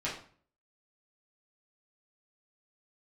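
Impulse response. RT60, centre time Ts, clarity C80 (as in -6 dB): 0.45 s, 31 ms, 10.5 dB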